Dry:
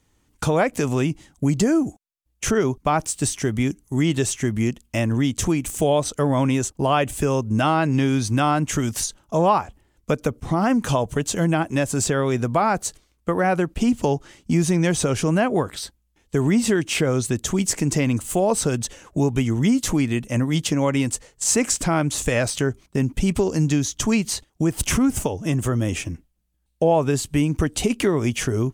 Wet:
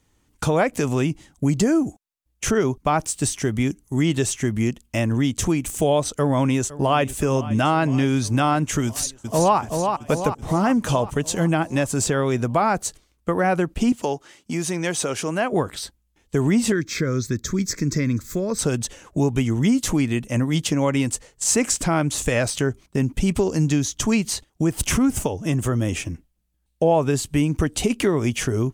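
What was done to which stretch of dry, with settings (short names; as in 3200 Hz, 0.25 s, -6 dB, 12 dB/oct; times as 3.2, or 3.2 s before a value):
6.11–7.03 echo throw 0.51 s, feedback 75%, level -17 dB
8.86–9.58 echo throw 0.38 s, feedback 60%, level -5 dB
13.92–15.53 HPF 460 Hz 6 dB/oct
16.72–18.59 fixed phaser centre 2900 Hz, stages 6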